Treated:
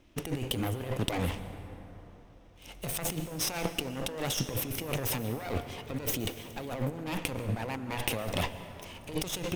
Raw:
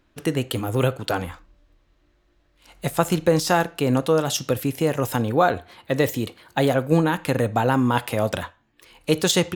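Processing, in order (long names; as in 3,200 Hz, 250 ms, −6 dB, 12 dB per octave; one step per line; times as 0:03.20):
lower of the sound and its delayed copy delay 0.33 ms
compressor whose output falls as the input rises −31 dBFS, ratio −1
dense smooth reverb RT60 3.9 s, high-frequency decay 0.4×, pre-delay 105 ms, DRR 11 dB
level −3.5 dB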